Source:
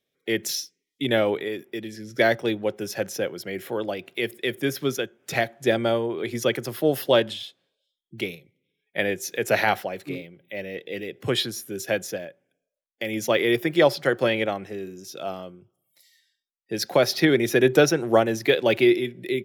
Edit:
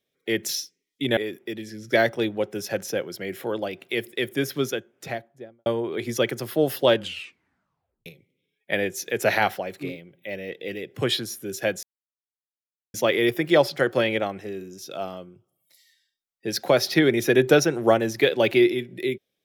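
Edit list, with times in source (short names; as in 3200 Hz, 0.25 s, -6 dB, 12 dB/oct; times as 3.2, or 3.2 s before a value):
1.17–1.43 cut
4.88–5.92 studio fade out
7.22 tape stop 1.10 s
12.09–13.2 mute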